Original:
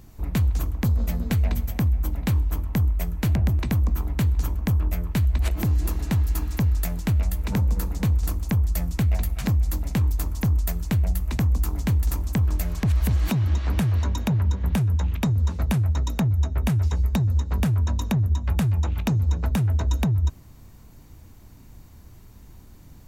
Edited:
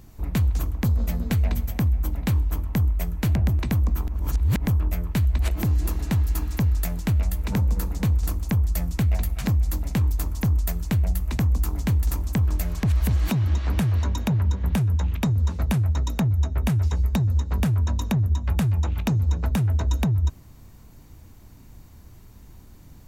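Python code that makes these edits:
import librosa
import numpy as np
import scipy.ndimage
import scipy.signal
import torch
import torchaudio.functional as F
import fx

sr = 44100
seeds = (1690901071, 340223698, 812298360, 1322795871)

y = fx.edit(x, sr, fx.reverse_span(start_s=4.08, length_s=0.59), tone=tone)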